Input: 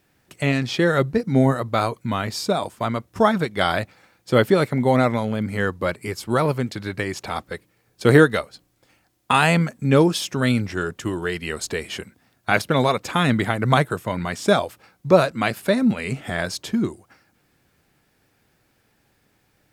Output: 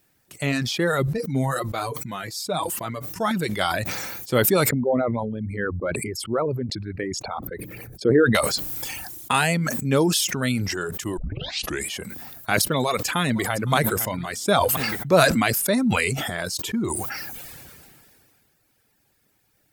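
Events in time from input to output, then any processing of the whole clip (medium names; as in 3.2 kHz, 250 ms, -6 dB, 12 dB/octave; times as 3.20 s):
1.07–3.31 s: flange 1.8 Hz, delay 5.5 ms, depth 1.6 ms, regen +30%
4.69–8.35 s: resonances exaggerated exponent 2
11.17 s: tape start 0.71 s
12.74–13.74 s: echo throw 510 ms, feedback 35%, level -16.5 dB
whole clip: reverb removal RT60 0.85 s; treble shelf 6.7 kHz +12 dB; decay stretcher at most 25 dB/s; trim -4 dB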